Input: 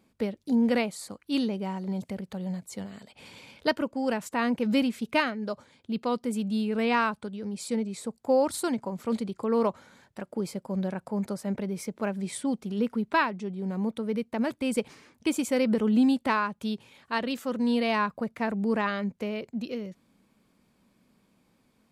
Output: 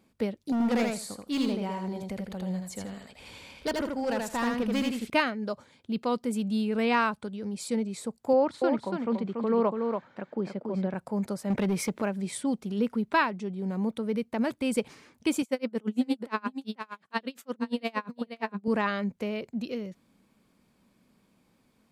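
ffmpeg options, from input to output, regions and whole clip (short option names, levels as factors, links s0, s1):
-filter_complex "[0:a]asettb=1/sr,asplit=3[s0][s1][s2];[s0]atrim=end=0.524[s3];[s1]atrim=start=0.52:end=5.1,asetpts=PTS-STARTPTS,afade=t=in:d=0.004:c=qsin,afade=t=out:st=4.576:d=0.004:c=qsin,asubboost=boost=11:cutoff=51,volume=17.8,asoftclip=hard,volume=0.0562,aecho=1:1:81|162|243:0.708|0.113|0.0181,atrim=end_sample=201978[s4];[s2]atrim=start=5.096[s5];[s3][s4]acrossfade=d=0.004:c1=hsin:c2=qsin[s6];[s6][s5]acrossfade=d=0.004:c1=qsin:c2=hsin,asettb=1/sr,asplit=3[s7][s8][s9];[s7]atrim=end=8.334[s10];[s8]atrim=start=8.33:end=10.94,asetpts=PTS-STARTPTS,afade=t=in:d=0.004:c=qsin,afade=t=out:st=2.606:d=0.004:c=qsin,highpass=130,lowpass=2800,aecho=1:1:285:0.562,atrim=end_sample=115101[s11];[s9]atrim=start=10.936[s12];[s10][s11]acrossfade=d=0.004:c1=hsin:c2=qsin[s13];[s13][s12]acrossfade=d=0.004:c1=qsin:c2=hsin,asettb=1/sr,asplit=3[s14][s15][s16];[s14]atrim=end=11.504[s17];[s15]atrim=start=11.5:end=12.02,asetpts=PTS-STARTPTS,afade=t=in:d=0.004:c=qsin,afade=t=out:st=0.516:d=0.004:c=qsin,equalizer=f=2200:t=o:w=1.6:g=4.5,acontrast=41,asoftclip=type=hard:threshold=0.0794[s18];[s16]atrim=start=12.016[s19];[s17][s18]acrossfade=d=0.004:c1=hsin:c2=qsin[s20];[s20][s19]acrossfade=d=0.004:c1=qsin:c2=hsin,asettb=1/sr,asplit=3[s21][s22][s23];[s21]atrim=end=15.424[s24];[s22]atrim=start=15.42:end=18.68,asetpts=PTS-STARTPTS,afade=t=in:d=0.004:c=qsin,afade=t=out:st=3.256:d=0.004:c=qsin,highpass=150,aecho=1:1:491:0.355,atrim=end_sample=143766,aeval=exprs='val(0)*pow(10,-33*(0.5-0.5*cos(2*PI*8.6*n/s))/20)':c=same[s25];[s23]atrim=start=18.676[s26];[s24][s25]acrossfade=d=0.004:c1=hsin:c2=qsin[s27];[s27][s26]acrossfade=d=0.004:c1=qsin:c2=hsin"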